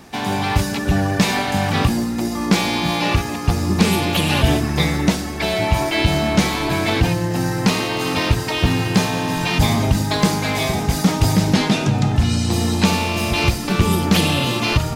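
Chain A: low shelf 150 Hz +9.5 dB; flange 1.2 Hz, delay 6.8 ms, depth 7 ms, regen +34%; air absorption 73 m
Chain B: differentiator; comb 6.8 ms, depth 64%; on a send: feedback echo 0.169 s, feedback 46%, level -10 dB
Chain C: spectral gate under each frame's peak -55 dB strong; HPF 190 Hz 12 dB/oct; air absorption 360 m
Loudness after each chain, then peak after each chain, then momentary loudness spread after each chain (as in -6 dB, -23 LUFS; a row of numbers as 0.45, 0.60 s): -19.0, -26.5, -22.5 LUFS; -1.5, -9.0, -3.5 dBFS; 6, 7, 4 LU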